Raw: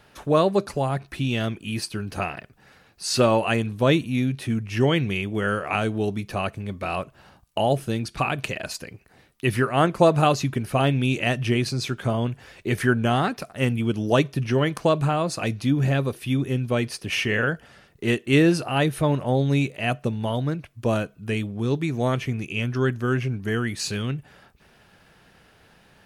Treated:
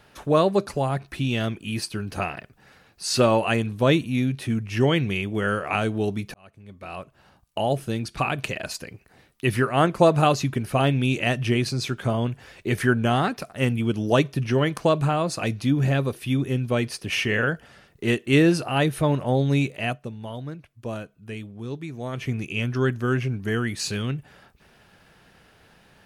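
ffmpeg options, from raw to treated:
-filter_complex "[0:a]asplit=4[a][b][c][d];[a]atrim=end=6.34,asetpts=PTS-STARTPTS,afade=t=out:st=6.336:d=0.004:c=hsin[e];[b]atrim=start=6.34:end=19.99,asetpts=PTS-STARTPTS,afade=t=in:d=2.38:c=qsin,afade=t=out:st=13.48:d=0.17:silence=0.354813[f];[c]atrim=start=19.99:end=22.12,asetpts=PTS-STARTPTS,volume=-9dB[g];[d]atrim=start=22.12,asetpts=PTS-STARTPTS,afade=t=in:d=0.17:silence=0.354813[h];[e][f][g][h]concat=n=4:v=0:a=1"

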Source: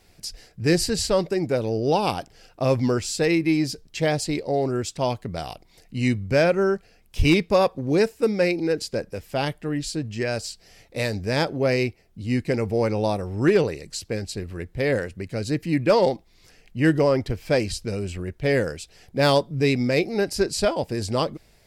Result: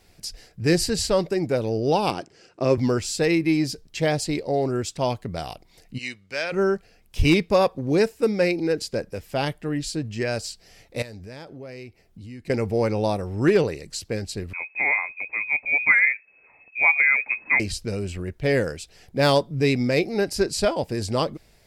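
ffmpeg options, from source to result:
-filter_complex "[0:a]asettb=1/sr,asplit=3[a][b][c];[a]atrim=end=2.104[d];[b]atrim=start=2.1:end=2.78,asetpts=PTS-STARTPTS,afade=t=in:d=0.004:c=qsin,afade=t=out:st=0.676:d=0.004:c=qsin,highpass=130,equalizer=f=360:t=q:w=4:g=9,equalizer=f=780:t=q:w=4:g=-5,equalizer=f=3.5k:t=q:w=4:g=-6,lowpass=f=8.4k:w=0.5412,lowpass=f=8.4k:w=1.3066[e];[c]atrim=start=2.776[f];[d][e]acrossfade=d=0.004:c1=hsin:c2=qsin[g];[g][f]acrossfade=d=0.004:c1=qsin:c2=hsin,asplit=3[h][i][j];[h]afade=t=out:st=5.97:d=0.02[k];[i]bandpass=f=3.5k:t=q:w=0.64,afade=t=in:st=5.97:d=0.02,afade=t=out:st=6.51:d=0.02[l];[j]afade=t=in:st=6.51:d=0.02[m];[k][l][m]amix=inputs=3:normalize=0,asettb=1/sr,asplit=3[n][o][p];[n]atrim=end=11.024[q];[o]atrim=start=11.02:end=12.5,asetpts=PTS-STARTPTS,afade=t=in:d=0.004:c=qsin,afade=t=out:st=1.476:d=0.004:c=qsin,acompressor=threshold=-39dB:ratio=4:attack=3.2:release=140:knee=1:detection=peak[r];[p]atrim=start=12.496[s];[q][r]acrossfade=d=0.004:c1=hsin:c2=qsin[t];[t][s]acrossfade=d=0.004:c1=qsin:c2=hsin,asettb=1/sr,asplit=3[u][v][w];[u]atrim=end=14.534[x];[v]atrim=start=14.53:end=17.6,asetpts=PTS-STARTPTS,afade=t=in:d=0.004:c=qsin,afade=t=out:st=3.066:d=0.004:c=qsin,lowpass=f=2.2k:t=q:w=0.5098,lowpass=f=2.2k:t=q:w=0.6013,lowpass=f=2.2k:t=q:w=0.9,lowpass=f=2.2k:t=q:w=2.563,afreqshift=-2600[y];[w]atrim=start=17.596[z];[x][y]acrossfade=d=0.004:c1=hsin:c2=qsin[aa];[aa][z]acrossfade=d=0.004:c1=qsin:c2=hsin"

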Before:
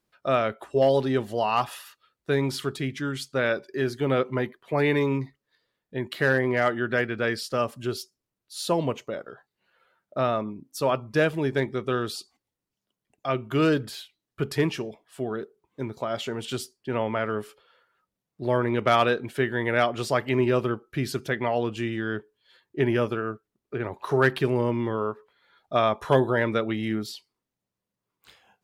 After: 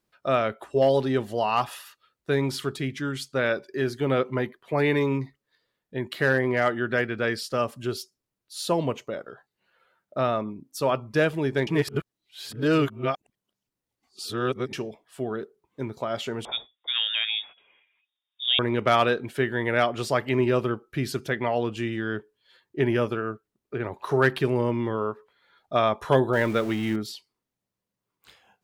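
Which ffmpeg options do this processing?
-filter_complex "[0:a]asettb=1/sr,asplit=3[a][b][c];[a]atrim=end=16.454[d];[b]atrim=start=16.45:end=18.59,asetpts=PTS-STARTPTS,afade=t=in:d=0.004:c=qsin,afade=t=out:st=2.136:d=0.004:c=qsin,lowpass=f=3.2k:t=q:w=0.5098,lowpass=f=3.2k:t=q:w=0.6013,lowpass=f=3.2k:t=q:w=0.9,lowpass=f=3.2k:t=q:w=2.563,afreqshift=-3800[e];[c]atrim=start=18.586[f];[d][e]acrossfade=d=0.004:c1=hsin:c2=qsin[g];[g][f]acrossfade=d=0.004:c1=qsin:c2=hsin,asettb=1/sr,asplit=3[h][i][j];[h]atrim=end=26.334[k];[i]atrim=start=26.33:end=26.96,asetpts=PTS-STARTPTS,afade=t=in:d=0.004:c=qsin,afade=t=out:st=0.626:d=0.004:c=qsin,aeval=exprs='val(0)+0.5*0.0178*sgn(val(0))':c=same[l];[j]atrim=start=26.956[m];[k][l]acrossfade=d=0.004:c1=hsin:c2=qsin[n];[n][m]acrossfade=d=0.004:c1=qsin:c2=hsin,asplit=3[o][p][q];[o]atrim=end=11.672[r];[p]atrim=start=11.668:end=14.732,asetpts=PTS-STARTPTS,areverse[s];[q]atrim=start=14.728[t];[r][s]acrossfade=d=0.004:c1=hsin:c2=hsin[u];[u][t]acrossfade=d=0.004:c1=hsin:c2=hsin"

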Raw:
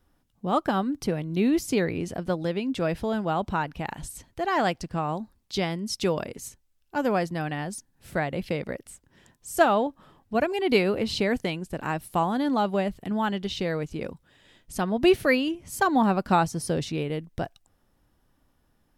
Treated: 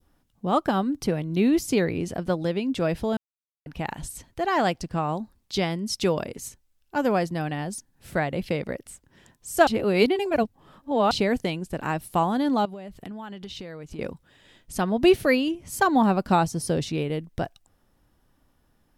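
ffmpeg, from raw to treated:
-filter_complex "[0:a]asettb=1/sr,asplit=3[a][b][c];[a]atrim=end=12.654[d];[b]atrim=start=12.65:end=13.99,asetpts=PTS-STARTPTS,afade=t=in:d=0.004:c=qsin,afade=t=out:st=1.336:d=0.004:c=qsin,acompressor=threshold=-36dB:ratio=8:attack=3.2:release=140:knee=1:detection=peak[e];[c]atrim=start=13.986[f];[d][e]acrossfade=d=0.004:c1=hsin:c2=qsin[g];[g][f]acrossfade=d=0.004:c1=qsin:c2=hsin,asplit=5[h][i][j][k][l];[h]atrim=end=3.17,asetpts=PTS-STARTPTS,afade=t=out:st=3.166:d=0.004:c=hsin[m];[i]atrim=start=3.17:end=3.66,asetpts=PTS-STARTPTS,volume=0[n];[j]atrim=start=3.66:end=9.672,asetpts=PTS-STARTPTS,afade=t=in:d=0.004:c=hsin[o];[k]atrim=start=9.668:end=11.112,asetpts=PTS-STARTPTS,areverse[p];[l]atrim=start=11.108[q];[m][n][o]concat=n=3:v=0:a=1[r];[r][p]acrossfade=d=0.004:c1=hsin:c2=hsin[s];[s][q]acrossfade=d=0.004:c1=hsin:c2=hsin,adynamicequalizer=threshold=0.01:dfrequency=1600:dqfactor=0.85:tfrequency=1600:tqfactor=0.85:attack=5:release=100:ratio=0.375:range=2.5:mode=cutabove:tftype=bell,volume=2dB"

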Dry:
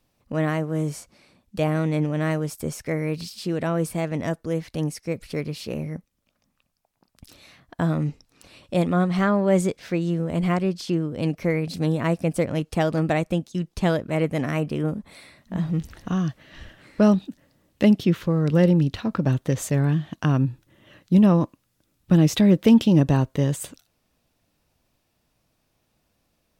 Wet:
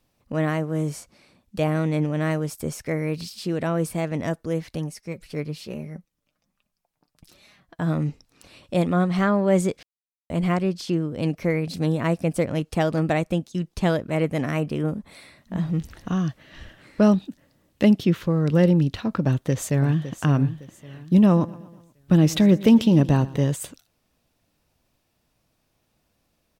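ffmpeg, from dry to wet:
-filter_complex "[0:a]asplit=3[a][b][c];[a]afade=t=out:st=4.77:d=0.02[d];[b]flanger=delay=4.8:depth=2:regen=42:speed=1.2:shape=sinusoidal,afade=t=in:st=4.77:d=0.02,afade=t=out:st=7.86:d=0.02[e];[c]afade=t=in:st=7.86:d=0.02[f];[d][e][f]amix=inputs=3:normalize=0,asplit=2[g][h];[h]afade=t=in:st=19.21:d=0.01,afade=t=out:st=20.18:d=0.01,aecho=0:1:560|1120|1680|2240:0.251189|0.087916|0.0307706|0.0107697[i];[g][i]amix=inputs=2:normalize=0,asettb=1/sr,asplit=3[j][k][l];[j]atrim=end=21.244[m];[k]atrim=start=21.24:end=23.52,asetpts=PTS-STARTPTS,afade=t=in:d=0.004:c=qsin,afade=t=out:st=2.276:d=0.004:c=qsin,aecho=1:1:120|240|360|480:0.106|0.0572|0.0309|0.0167,atrim=end_sample=100548[n];[l]atrim=start=23.516[o];[m][n]acrossfade=d=0.004:c1=hsin:c2=qsin[p];[p][o]acrossfade=d=0.004:c1=qsin:c2=hsin,asplit=3[q][r][s];[q]atrim=end=9.83,asetpts=PTS-STARTPTS,afade=t=out:st=9.826:d=0.004:c=hsin[t];[r]atrim=start=9.83:end=10.3,asetpts=PTS-STARTPTS,volume=0[u];[s]atrim=start=10.3,asetpts=PTS-STARTPTS,afade=t=in:d=0.004:c=hsin[v];[t][u][v]concat=n=3:v=0:a=1"

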